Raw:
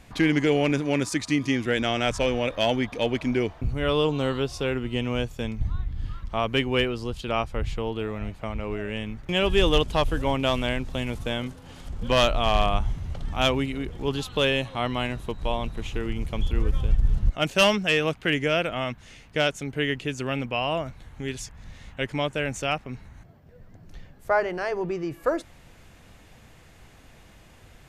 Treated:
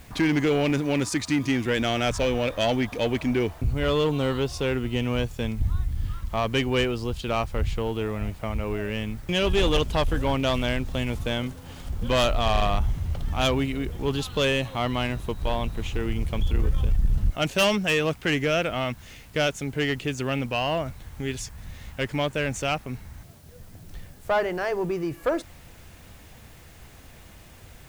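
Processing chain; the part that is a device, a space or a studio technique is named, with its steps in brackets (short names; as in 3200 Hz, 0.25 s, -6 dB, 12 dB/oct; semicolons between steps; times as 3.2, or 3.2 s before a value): open-reel tape (soft clip -18 dBFS, distortion -14 dB; bell 76 Hz +4.5 dB 0.85 oct; white noise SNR 32 dB); gain +2 dB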